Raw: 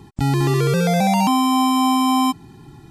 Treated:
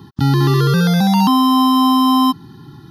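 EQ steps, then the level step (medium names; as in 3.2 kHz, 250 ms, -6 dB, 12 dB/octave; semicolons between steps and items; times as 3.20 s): high-pass 110 Hz; static phaser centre 2.3 kHz, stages 6; +7.0 dB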